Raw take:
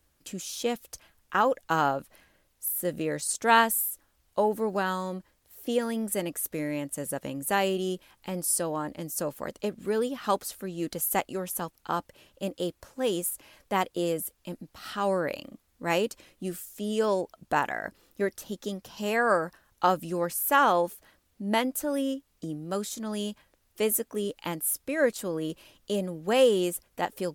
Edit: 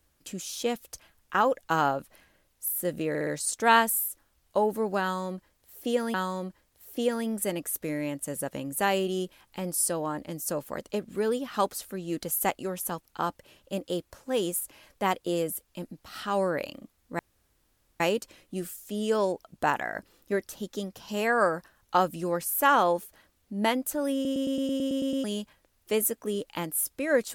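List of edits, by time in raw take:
3.09 s: stutter 0.06 s, 4 plays
4.84–5.96 s: loop, 2 plays
15.89 s: insert room tone 0.81 s
22.03 s: stutter in place 0.11 s, 10 plays

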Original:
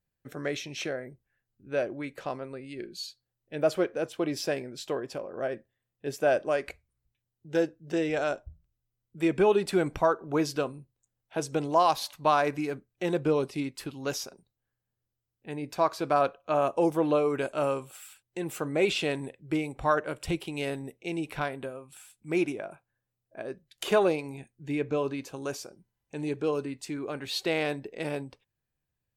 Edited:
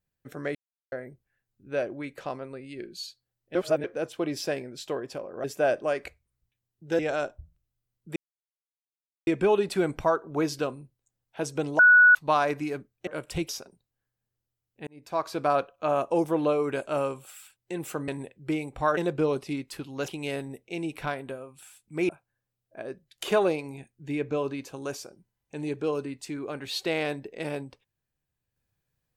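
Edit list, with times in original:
0.55–0.92 s: mute
3.55–3.84 s: reverse
5.44–6.07 s: delete
7.62–8.07 s: delete
9.24 s: insert silence 1.11 s
11.76–12.12 s: bleep 1.47 kHz -12 dBFS
13.04–14.15 s: swap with 20.00–20.42 s
15.53–15.98 s: fade in
18.74–19.11 s: delete
22.43–22.69 s: delete

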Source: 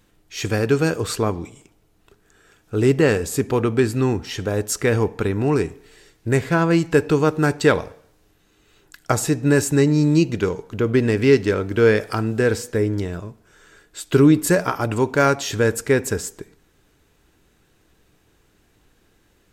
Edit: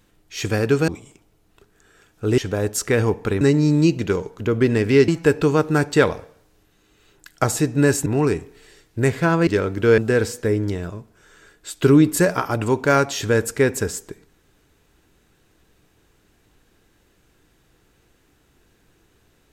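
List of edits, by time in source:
0.88–1.38 s: delete
2.88–4.32 s: delete
5.35–6.76 s: swap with 9.74–11.41 s
11.92–12.28 s: delete

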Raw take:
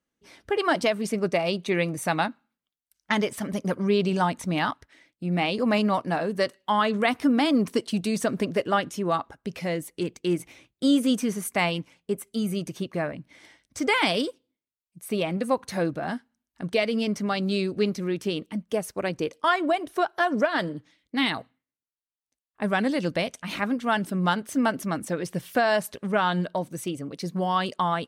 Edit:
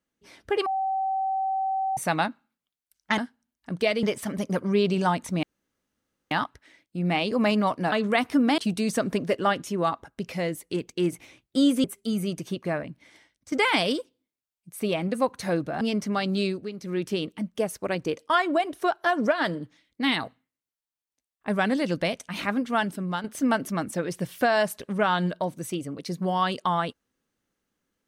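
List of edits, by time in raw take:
0.66–1.97 s: bleep 769 Hz -23.5 dBFS
4.58 s: insert room tone 0.88 s
6.19–6.82 s: delete
7.48–7.85 s: delete
11.11–12.13 s: delete
13.16–13.81 s: fade out linear, to -12 dB
16.10–16.95 s: move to 3.18 s
17.60–18.12 s: dip -13 dB, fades 0.24 s
23.87–24.38 s: fade out, to -9 dB

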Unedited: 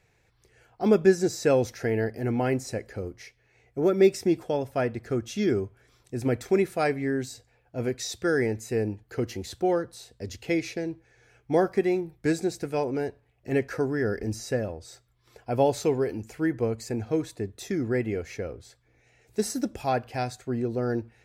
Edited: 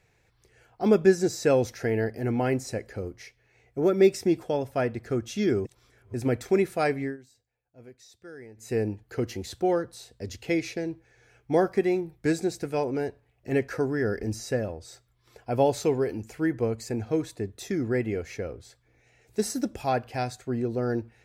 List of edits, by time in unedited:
5.65–6.14 s: reverse
7.02–8.71 s: dip -20 dB, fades 0.15 s

